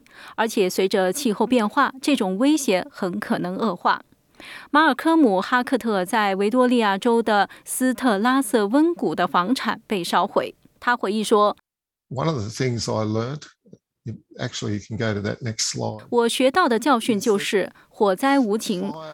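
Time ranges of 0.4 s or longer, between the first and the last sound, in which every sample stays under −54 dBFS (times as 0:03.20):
0:11.60–0:12.11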